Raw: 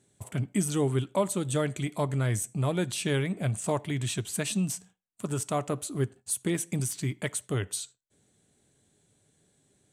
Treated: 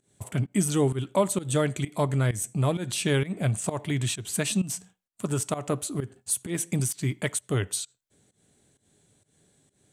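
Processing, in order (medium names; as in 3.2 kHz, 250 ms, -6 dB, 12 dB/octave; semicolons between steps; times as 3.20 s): volume shaper 130 bpm, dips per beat 1, -18 dB, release 181 ms; trim +3.5 dB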